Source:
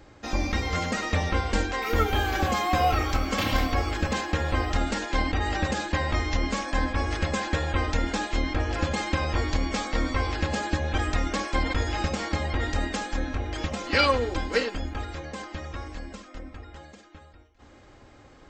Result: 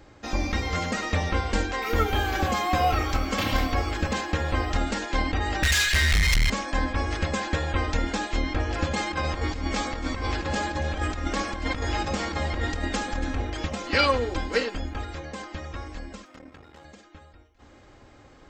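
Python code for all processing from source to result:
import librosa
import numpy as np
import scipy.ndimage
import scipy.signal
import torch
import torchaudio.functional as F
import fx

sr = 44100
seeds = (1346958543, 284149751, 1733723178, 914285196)

y = fx.chain(x, sr, fx.cheby2_bandstop(low_hz=130.0, high_hz=910.0, order=4, stop_db=40),
    fx.leveller(passes=5), at=(5.63, 6.5))
y = fx.chain(y, sr, fx.over_compress(threshold_db=-27.0, ratio=-0.5),
    fx.echo_alternate(ms=141, hz=1700.0, feedback_pct=67, wet_db=-10.5), at=(8.96, 13.5))
y = fx.chain(y, sr, fx.halfwave_gain(db=-12.0),
    fx.highpass(hz=100.0, slope=12), at=(16.25, 16.85))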